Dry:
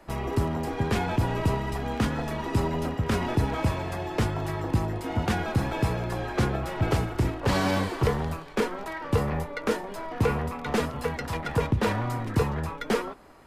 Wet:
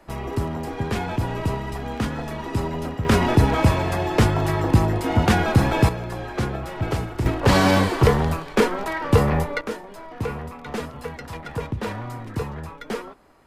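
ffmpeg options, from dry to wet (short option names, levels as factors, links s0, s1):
-af "asetnsamples=n=441:p=0,asendcmd='3.05 volume volume 8.5dB;5.89 volume volume 0dB;7.26 volume volume 8dB;9.61 volume volume -3.5dB',volume=1.06"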